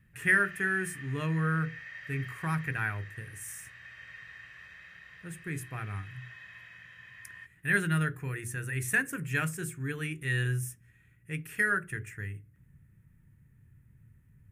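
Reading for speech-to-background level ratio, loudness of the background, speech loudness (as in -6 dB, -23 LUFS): 14.5 dB, -46.5 LUFS, -32.0 LUFS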